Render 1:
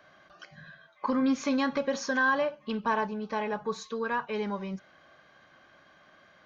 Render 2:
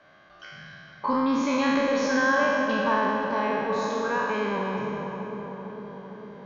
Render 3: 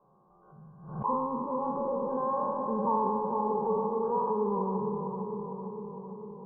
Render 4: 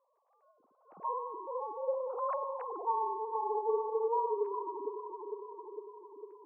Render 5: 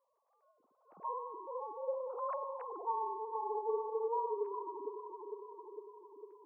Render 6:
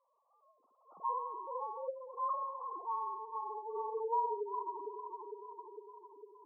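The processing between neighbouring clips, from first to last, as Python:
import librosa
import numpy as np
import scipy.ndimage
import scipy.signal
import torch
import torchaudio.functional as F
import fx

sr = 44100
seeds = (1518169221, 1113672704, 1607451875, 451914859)

y1 = fx.spec_trails(x, sr, decay_s=2.42)
y1 = fx.air_absorb(y1, sr, metres=69.0)
y1 = fx.echo_filtered(y1, sr, ms=454, feedback_pct=71, hz=1400.0, wet_db=-6.0)
y2 = scipy.signal.sosfilt(scipy.signal.ellip(4, 1.0, 50, 1000.0, 'lowpass', fs=sr, output='sos'), y1)
y2 = fx.fixed_phaser(y2, sr, hz=420.0, stages=8)
y2 = fx.pre_swell(y2, sr, db_per_s=85.0)
y3 = fx.sine_speech(y2, sr)
y3 = fx.bandpass_q(y3, sr, hz=640.0, q=1.3)
y3 = y3 * librosa.db_to_amplitude(-2.0)
y4 = fx.notch(y3, sr, hz=770.0, q=25.0)
y4 = y4 * librosa.db_to_amplitude(-4.0)
y5 = fx.spec_gate(y4, sr, threshold_db=-15, keep='strong')
y5 = fx.tilt_shelf(y5, sr, db=-9.0, hz=740.0)
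y5 = fx.spec_box(y5, sr, start_s=1.9, length_s=1.86, low_hz=380.0, high_hz=1000.0, gain_db=-7)
y5 = y5 * librosa.db_to_amplitude(2.0)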